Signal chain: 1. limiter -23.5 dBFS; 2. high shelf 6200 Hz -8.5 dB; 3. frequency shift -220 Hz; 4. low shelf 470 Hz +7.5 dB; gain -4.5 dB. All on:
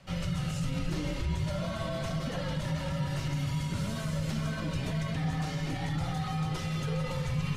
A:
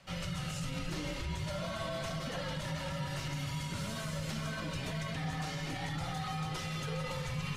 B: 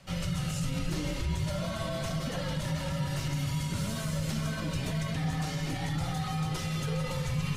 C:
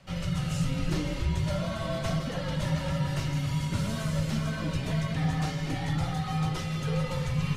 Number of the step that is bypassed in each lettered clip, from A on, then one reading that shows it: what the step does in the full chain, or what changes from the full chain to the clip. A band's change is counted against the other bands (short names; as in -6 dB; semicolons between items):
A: 4, 125 Hz band -6.0 dB; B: 2, 8 kHz band +5.0 dB; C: 1, mean gain reduction 2.5 dB